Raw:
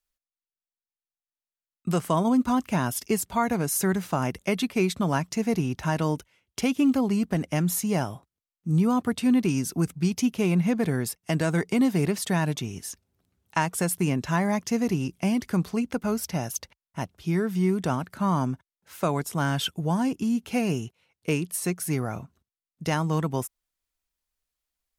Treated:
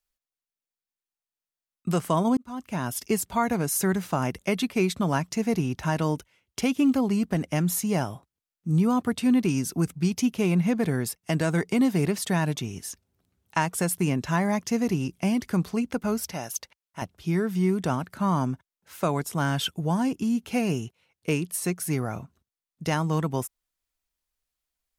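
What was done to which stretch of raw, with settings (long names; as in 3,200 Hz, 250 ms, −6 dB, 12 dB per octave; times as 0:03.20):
0:02.37–0:03.06: fade in
0:16.32–0:17.02: low-shelf EQ 290 Hz −11.5 dB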